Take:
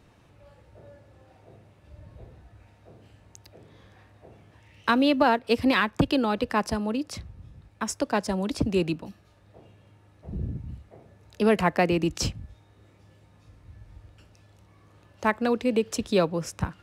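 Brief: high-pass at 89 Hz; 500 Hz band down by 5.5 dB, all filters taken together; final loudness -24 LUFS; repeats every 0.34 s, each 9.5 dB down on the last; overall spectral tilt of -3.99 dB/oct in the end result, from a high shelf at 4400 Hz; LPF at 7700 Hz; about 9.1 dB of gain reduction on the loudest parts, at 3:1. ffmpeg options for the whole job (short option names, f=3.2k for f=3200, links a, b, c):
-af "highpass=89,lowpass=7.7k,equalizer=f=500:t=o:g=-7,highshelf=f=4.4k:g=8.5,acompressor=threshold=-31dB:ratio=3,aecho=1:1:340|680|1020|1360:0.335|0.111|0.0365|0.012,volume=10dB"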